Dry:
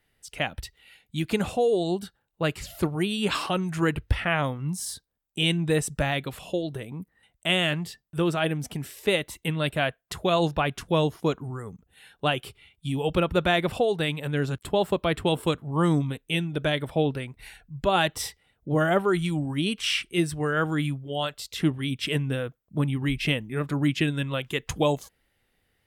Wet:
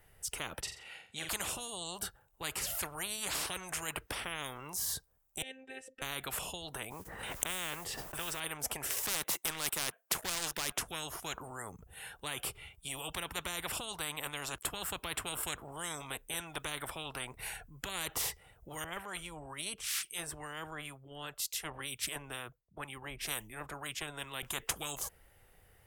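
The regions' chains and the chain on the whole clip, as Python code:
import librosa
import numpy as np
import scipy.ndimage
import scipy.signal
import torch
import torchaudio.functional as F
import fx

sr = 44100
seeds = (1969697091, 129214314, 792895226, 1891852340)

y = fx.chain(x, sr, fx.bandpass_edges(low_hz=160.0, high_hz=6400.0),
    fx.room_flutter(wall_m=7.5, rt60_s=0.39), at=(0.61, 1.29))
y = fx.chain(y, sr, fx.robotise(hz=263.0),
    fx.vowel_filter(vowel='e'), at=(5.42, 6.02))
y = fx.chain(y, sr, fx.lowpass(hz=3300.0, slope=6),
    fx.mod_noise(seeds[0], snr_db=30),
    fx.pre_swell(db_per_s=70.0), at=(6.9, 8.4))
y = fx.chain(y, sr, fx.highpass(hz=210.0, slope=24),
    fx.leveller(passes=2), at=(8.9, 10.78))
y = fx.chain(y, sr, fx.harmonic_tremolo(hz=2.1, depth_pct=70, crossover_hz=750.0),
    fx.band_widen(depth_pct=100), at=(18.84, 24.43))
y = fx.graphic_eq(y, sr, hz=(250, 2000, 4000), db=(-12, -5, -11))
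y = fx.spectral_comp(y, sr, ratio=10.0)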